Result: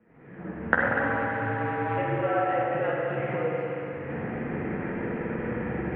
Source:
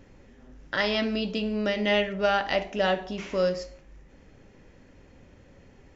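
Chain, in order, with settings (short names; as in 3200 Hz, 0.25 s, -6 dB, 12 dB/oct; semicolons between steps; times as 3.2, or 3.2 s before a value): 0.86–1.98 sample sorter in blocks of 256 samples; recorder AGC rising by 52 dB/s; vibrato 10 Hz 16 cents; in parallel at -10 dB: bit-crush 7-bit; on the sum: flange 0.86 Hz, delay 7.1 ms, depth 7.6 ms, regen +27%; on a send: split-band echo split 1500 Hz, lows 0.104 s, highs 0.246 s, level -7.5 dB; on the sum: spring tank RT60 3.7 s, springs 45/60 ms, chirp 30 ms, DRR -2 dB; mistuned SSB -61 Hz 170–2300 Hz; gain -5.5 dB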